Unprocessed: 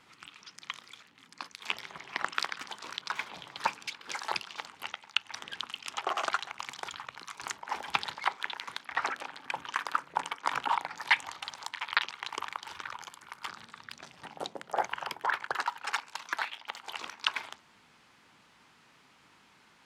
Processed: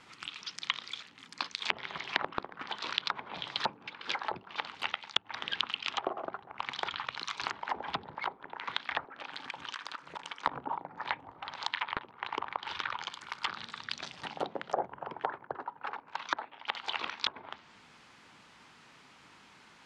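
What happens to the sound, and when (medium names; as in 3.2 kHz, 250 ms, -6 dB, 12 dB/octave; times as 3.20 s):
9.03–10.46 s: compression 10:1, threshold -42 dBFS
whole clip: low-pass that closes with the level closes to 500 Hz, closed at -31 dBFS; low-pass 9.4 kHz; dynamic bell 3.8 kHz, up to +8 dB, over -60 dBFS, Q 1.3; trim +4 dB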